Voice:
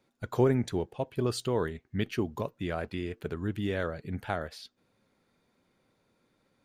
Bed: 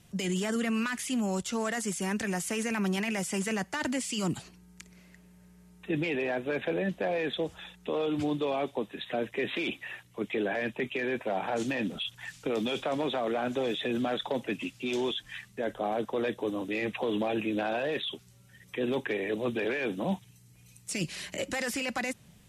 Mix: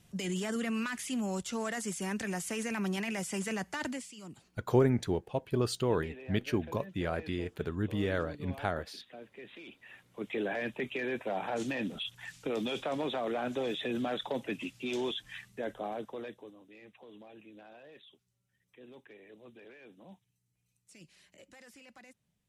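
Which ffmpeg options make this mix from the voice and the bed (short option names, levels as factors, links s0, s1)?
-filter_complex "[0:a]adelay=4350,volume=0.944[s0];[1:a]volume=3.16,afade=t=out:st=3.82:d=0.31:silence=0.211349,afade=t=in:st=9.76:d=0.63:silence=0.199526,afade=t=out:st=15.5:d=1.06:silence=0.105925[s1];[s0][s1]amix=inputs=2:normalize=0"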